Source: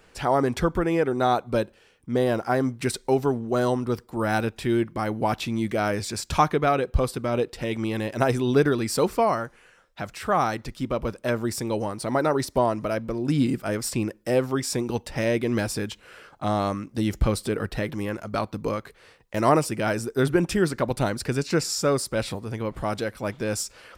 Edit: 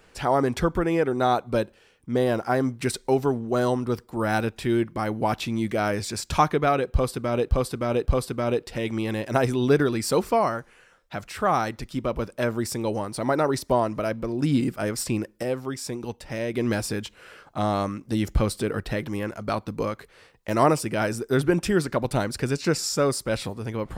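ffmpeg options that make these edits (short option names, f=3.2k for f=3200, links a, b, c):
-filter_complex "[0:a]asplit=5[a][b][c][d][e];[a]atrim=end=7.492[f];[b]atrim=start=6.918:end=7.492[g];[c]atrim=start=6.918:end=14.292[h];[d]atrim=start=14.288:end=15.402,asetpts=PTS-STARTPTS,volume=-5.5dB[i];[e]atrim=start=15.398[j];[f][g]acrossfade=d=0.004:c1=hsin:c2=hsin[k];[k][h]acrossfade=d=0.004:c1=hsin:c2=hsin[l];[l][i]acrossfade=d=0.004:c1=hsin:c2=hsin[m];[m][j]acrossfade=d=0.004:c1=hsin:c2=hsin"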